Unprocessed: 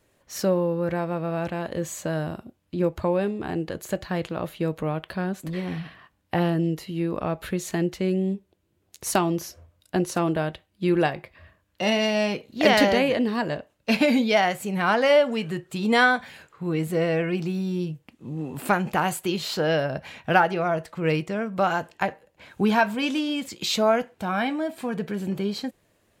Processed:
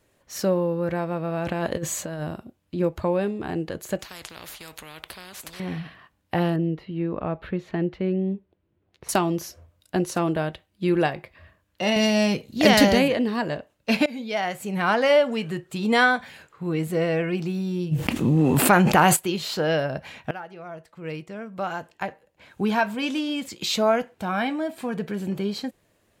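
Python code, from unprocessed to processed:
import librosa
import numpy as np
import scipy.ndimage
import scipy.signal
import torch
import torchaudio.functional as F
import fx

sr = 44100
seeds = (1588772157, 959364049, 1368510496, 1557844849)

y = fx.over_compress(x, sr, threshold_db=-30.0, ratio=-0.5, at=(1.46, 2.21), fade=0.02)
y = fx.spectral_comp(y, sr, ratio=4.0, at=(3.99, 5.6))
y = fx.air_absorb(y, sr, metres=360.0, at=(6.56, 9.09))
y = fx.bass_treble(y, sr, bass_db=9, treble_db=8, at=(11.96, 13.08))
y = fx.env_flatten(y, sr, amount_pct=70, at=(17.91, 19.15), fade=0.02)
y = fx.edit(y, sr, fx.fade_in_from(start_s=14.06, length_s=0.72, floor_db=-21.0),
    fx.fade_in_from(start_s=20.31, length_s=3.21, floor_db=-20.5), tone=tone)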